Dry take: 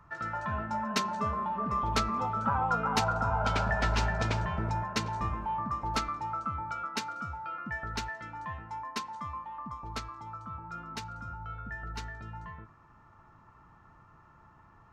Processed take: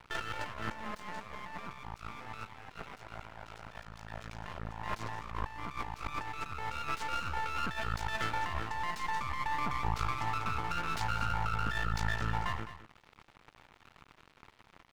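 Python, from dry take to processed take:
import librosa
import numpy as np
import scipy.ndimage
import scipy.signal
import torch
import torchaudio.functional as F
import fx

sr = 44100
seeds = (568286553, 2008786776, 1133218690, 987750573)

y = np.where(x < 0.0, 10.0 ** (-12.0 / 20.0) * x, x)
y = fx.peak_eq(y, sr, hz=220.0, db=-6.0, octaves=1.7)
y = fx.over_compress(y, sr, threshold_db=-45.0, ratio=-1.0)
y = np.sign(y) * np.maximum(np.abs(y) - 10.0 ** (-49.5 / 20.0), 0.0)
y = y + 10.0 ** (-13.0 / 20.0) * np.pad(y, (int(211 * sr / 1000.0), 0))[:len(y)]
y = y * librosa.db_to_amplitude(9.0)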